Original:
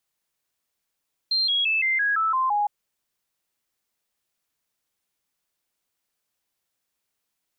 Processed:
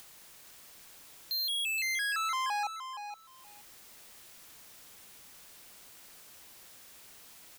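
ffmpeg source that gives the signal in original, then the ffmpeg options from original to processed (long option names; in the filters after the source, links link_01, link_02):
-f lavfi -i "aevalsrc='0.106*clip(min(mod(t,0.17),0.17-mod(t,0.17))/0.005,0,1)*sin(2*PI*4170*pow(2,-floor(t/0.17)/3)*mod(t,0.17))':duration=1.36:sample_rate=44100"
-filter_complex "[0:a]acompressor=mode=upward:threshold=-33dB:ratio=2.5,volume=32dB,asoftclip=hard,volume=-32dB,asplit=2[link_01][link_02];[link_02]aecho=0:1:471|942:0.355|0.0532[link_03];[link_01][link_03]amix=inputs=2:normalize=0"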